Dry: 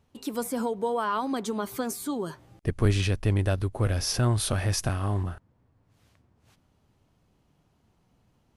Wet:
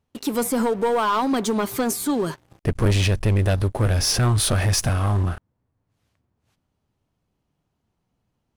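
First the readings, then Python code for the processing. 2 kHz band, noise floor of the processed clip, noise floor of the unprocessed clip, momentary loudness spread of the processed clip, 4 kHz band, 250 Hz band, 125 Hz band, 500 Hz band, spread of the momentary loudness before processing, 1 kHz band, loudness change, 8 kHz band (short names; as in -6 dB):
+6.5 dB, -76 dBFS, -68 dBFS, 8 LU, +7.5 dB, +6.5 dB, +5.5 dB, +6.5 dB, 9 LU, +7.0 dB, +6.5 dB, +8.0 dB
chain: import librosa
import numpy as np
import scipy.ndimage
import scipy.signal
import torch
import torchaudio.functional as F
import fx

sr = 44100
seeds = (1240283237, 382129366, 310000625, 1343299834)

y = fx.leveller(x, sr, passes=3)
y = y * 10.0 ** (-2.0 / 20.0)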